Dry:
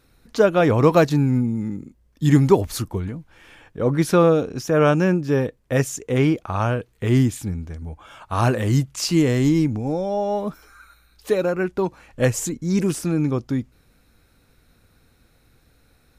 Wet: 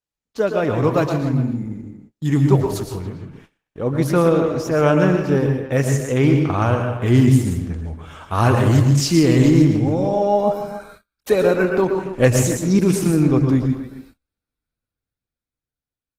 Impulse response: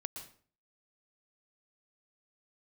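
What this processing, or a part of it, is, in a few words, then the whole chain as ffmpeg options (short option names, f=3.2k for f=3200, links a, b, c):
speakerphone in a meeting room: -filter_complex "[1:a]atrim=start_sample=2205[a];[0:a][a]afir=irnorm=-1:irlink=0,asplit=2[b][c];[c]adelay=280,highpass=300,lowpass=3.4k,asoftclip=type=hard:threshold=-11.5dB,volume=-12dB[d];[b][d]amix=inputs=2:normalize=0,dynaudnorm=f=160:g=21:m=13.5dB,agate=range=-34dB:threshold=-42dB:ratio=16:detection=peak,volume=-1dB" -ar 48000 -c:a libopus -b:a 16k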